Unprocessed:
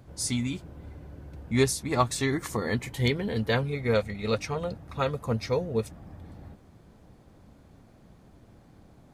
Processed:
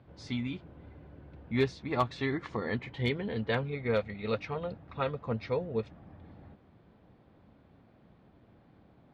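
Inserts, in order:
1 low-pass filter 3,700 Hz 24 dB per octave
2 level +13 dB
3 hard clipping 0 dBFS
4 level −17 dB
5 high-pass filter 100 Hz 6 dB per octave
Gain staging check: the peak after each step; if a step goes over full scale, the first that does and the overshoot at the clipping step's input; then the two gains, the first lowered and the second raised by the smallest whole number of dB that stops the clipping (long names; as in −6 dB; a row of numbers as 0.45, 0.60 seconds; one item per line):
−9.0, +4.0, 0.0, −17.0, −16.0 dBFS
step 2, 4.0 dB
step 2 +9 dB, step 4 −13 dB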